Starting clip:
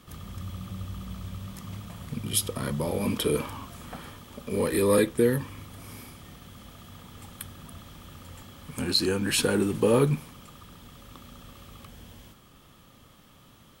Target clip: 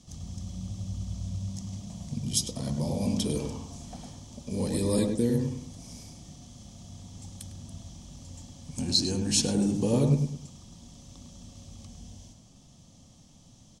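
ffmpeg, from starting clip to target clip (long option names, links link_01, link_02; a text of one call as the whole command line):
ffmpeg -i in.wav -filter_complex "[0:a]firequalizer=gain_entry='entry(240,0);entry(400,-11);entry(700,-2);entry(1300,-20);entry(1900,-14);entry(6000,10);entry(15000,-27)':delay=0.05:min_phase=1,asplit=2[link_01][link_02];[link_02]adelay=103,lowpass=frequency=1300:poles=1,volume=-3dB,asplit=2[link_03][link_04];[link_04]adelay=103,lowpass=frequency=1300:poles=1,volume=0.35,asplit=2[link_05][link_06];[link_06]adelay=103,lowpass=frequency=1300:poles=1,volume=0.35,asplit=2[link_07][link_08];[link_08]adelay=103,lowpass=frequency=1300:poles=1,volume=0.35,asplit=2[link_09][link_10];[link_10]adelay=103,lowpass=frequency=1300:poles=1,volume=0.35[link_11];[link_01][link_03][link_05][link_07][link_09][link_11]amix=inputs=6:normalize=0" out.wav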